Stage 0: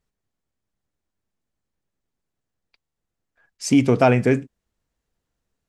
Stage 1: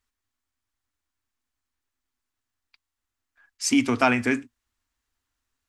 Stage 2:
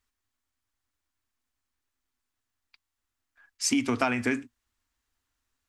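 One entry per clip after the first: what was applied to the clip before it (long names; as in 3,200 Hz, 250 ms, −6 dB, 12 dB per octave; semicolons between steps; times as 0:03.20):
drawn EQ curve 110 Hz 0 dB, 160 Hz −28 dB, 240 Hz +2 dB, 500 Hz −8 dB, 1,100 Hz +7 dB; level −4.5 dB
downward compressor 5 to 1, threshold −22 dBFS, peak gain reduction 8 dB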